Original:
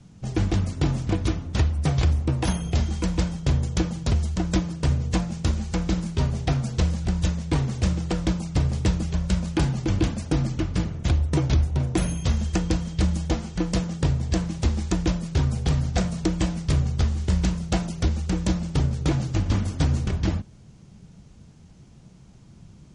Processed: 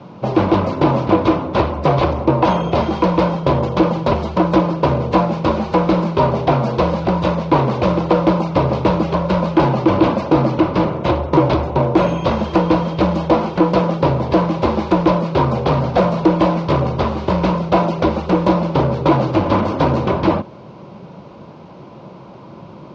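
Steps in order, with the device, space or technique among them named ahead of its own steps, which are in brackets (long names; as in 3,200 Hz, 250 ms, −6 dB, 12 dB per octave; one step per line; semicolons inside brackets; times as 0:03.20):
overdrive pedal into a guitar cabinet (mid-hump overdrive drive 24 dB, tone 1,300 Hz, clips at −11 dBFS; loudspeaker in its box 78–4,400 Hz, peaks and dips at 83 Hz −5 dB, 350 Hz +6 dB, 560 Hz +10 dB, 1,000 Hz +10 dB, 1,800 Hz −8 dB, 3,200 Hz −3 dB)
level +4.5 dB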